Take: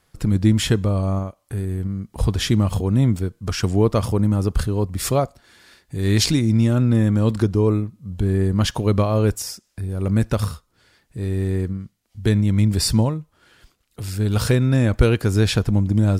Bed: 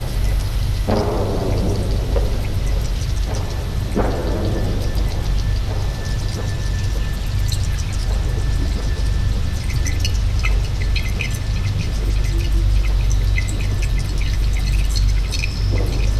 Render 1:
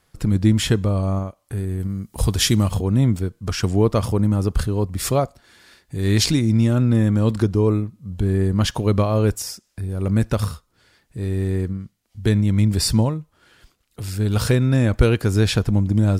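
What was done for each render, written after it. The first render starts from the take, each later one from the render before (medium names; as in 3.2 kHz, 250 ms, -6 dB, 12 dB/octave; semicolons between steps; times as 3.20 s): 1.79–2.67 s: treble shelf 6.4 kHz -> 3.9 kHz +12 dB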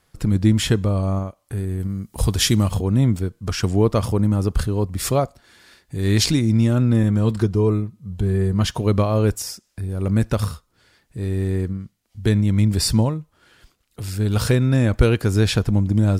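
7.03–8.81 s: comb of notches 280 Hz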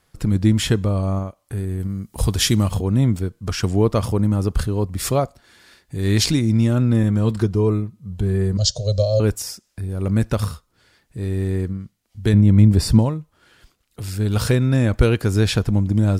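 8.57–9.20 s: FFT filter 120 Hz 0 dB, 330 Hz -27 dB, 570 Hz +10 dB, 920 Hz -25 dB, 1.5 kHz -19 dB, 2.3 kHz -21 dB, 4.3 kHz +12 dB, 7.5 kHz +9 dB, 11 kHz -24 dB; 12.33–12.99 s: tilt shelf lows +5.5 dB, about 1.3 kHz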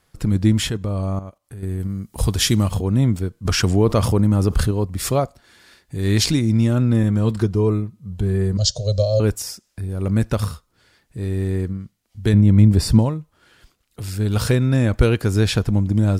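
0.69–1.63 s: level held to a coarse grid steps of 11 dB; 3.45–4.71 s: level flattener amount 50%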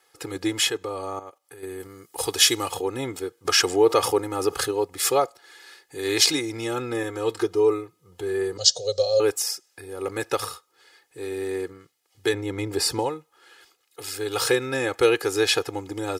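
high-pass 450 Hz 12 dB/octave; comb 2.4 ms, depth 96%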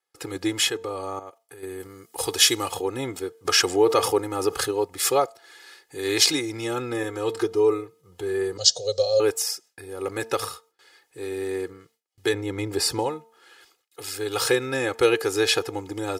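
de-hum 225.9 Hz, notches 4; gate with hold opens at -51 dBFS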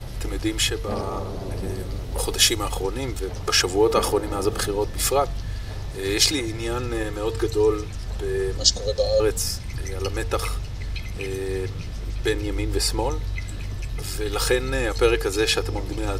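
add bed -11 dB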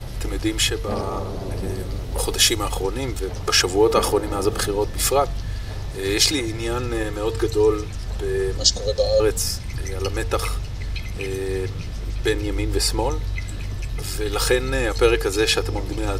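trim +2 dB; peak limiter -3 dBFS, peak gain reduction 2 dB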